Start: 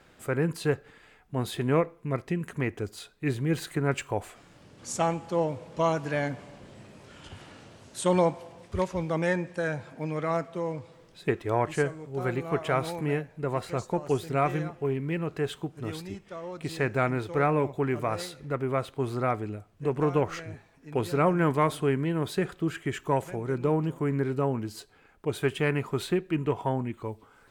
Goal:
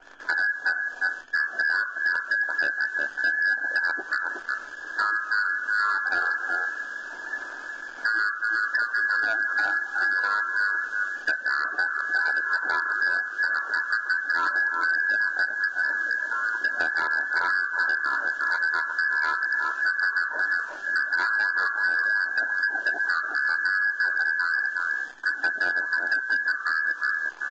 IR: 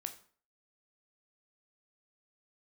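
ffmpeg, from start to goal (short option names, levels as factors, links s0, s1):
-filter_complex "[0:a]aecho=1:1:365:0.316,acrusher=bits=9:mode=log:mix=0:aa=0.000001,asplit=2[s0][s1];[s1]asuperstop=centerf=1800:order=12:qfactor=1.4[s2];[1:a]atrim=start_sample=2205,asetrate=41013,aresample=44100,lowshelf=f=490:g=11[s3];[s2][s3]afir=irnorm=-1:irlink=0,volume=1.19[s4];[s0][s4]amix=inputs=2:normalize=0,lowpass=f=2500:t=q:w=0.5098,lowpass=f=2500:t=q:w=0.6013,lowpass=f=2500:t=q:w=0.9,lowpass=f=2500:t=q:w=2.563,afreqshift=-2900,acrusher=bits=8:dc=4:mix=0:aa=0.000001,equalizer=f=125:t=o:w=1:g=-7,equalizer=f=250:t=o:w=1:g=-9,equalizer=f=500:t=o:w=1:g=12,equalizer=f=1000:t=o:w=1:g=8,equalizer=f=2000:t=o:w=1:g=9,acompressor=threshold=0.141:ratio=10,asetrate=26990,aresample=44100,atempo=1.63392,asoftclip=type=hard:threshold=0.168,volume=0.708" -ar 16000 -c:a libvorbis -b:a 32k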